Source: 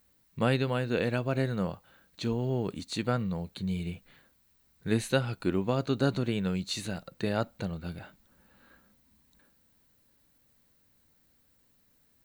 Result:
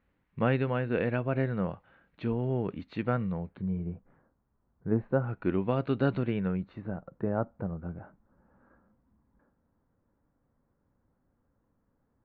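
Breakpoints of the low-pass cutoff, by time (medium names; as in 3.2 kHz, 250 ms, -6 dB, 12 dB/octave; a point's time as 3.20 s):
low-pass 24 dB/octave
3.31 s 2.5 kHz
3.86 s 1.2 kHz
5.14 s 1.2 kHz
5.54 s 2.8 kHz
6.19 s 2.8 kHz
6.86 s 1.3 kHz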